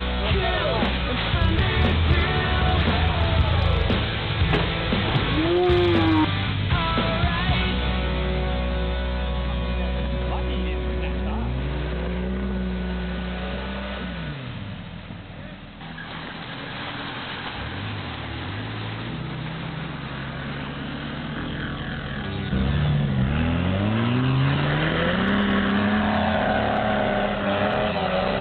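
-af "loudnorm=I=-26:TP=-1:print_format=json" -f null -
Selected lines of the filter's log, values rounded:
"input_i" : "-23.8",
"input_tp" : "-10.7",
"input_lra" : "9.8",
"input_thresh" : "-34.0",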